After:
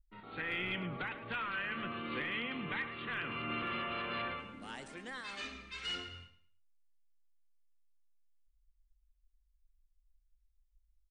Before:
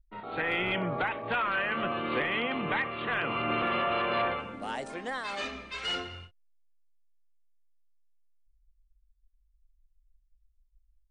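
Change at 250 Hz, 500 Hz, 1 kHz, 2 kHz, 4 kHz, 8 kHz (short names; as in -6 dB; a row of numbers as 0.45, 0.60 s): -7.5, -13.0, -11.0, -7.0, -6.0, -5.5 dB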